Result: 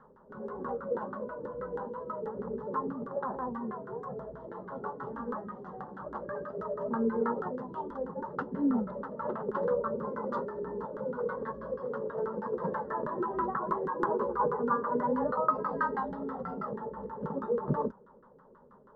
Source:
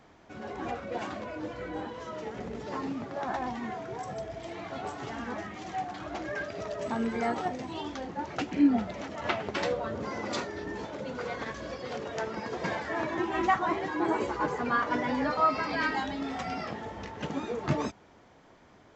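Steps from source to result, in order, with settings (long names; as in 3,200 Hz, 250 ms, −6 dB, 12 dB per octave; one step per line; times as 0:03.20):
auto-filter low-pass saw down 6.2 Hz 340–1,500 Hz
phaser with its sweep stopped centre 470 Hz, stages 8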